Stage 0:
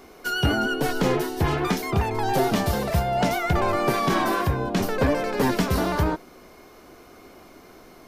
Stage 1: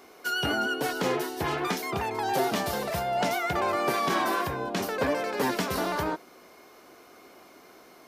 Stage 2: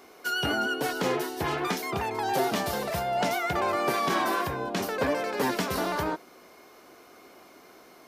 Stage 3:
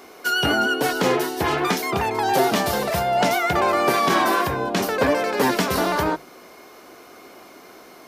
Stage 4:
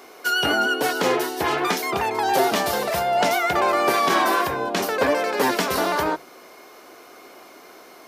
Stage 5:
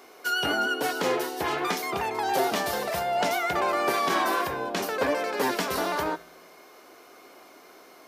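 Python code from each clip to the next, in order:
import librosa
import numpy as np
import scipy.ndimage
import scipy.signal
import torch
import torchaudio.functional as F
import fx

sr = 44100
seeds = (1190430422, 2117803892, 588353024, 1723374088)

y1 = fx.highpass(x, sr, hz=400.0, slope=6)
y1 = y1 * 10.0 ** (-2.0 / 20.0)
y2 = y1
y3 = fx.hum_notches(y2, sr, base_hz=50, count=3)
y3 = y3 * 10.0 ** (7.5 / 20.0)
y4 = fx.bass_treble(y3, sr, bass_db=-8, treble_db=0)
y5 = fx.comb_fb(y4, sr, f0_hz=57.0, decay_s=1.1, harmonics='odd', damping=0.0, mix_pct=50)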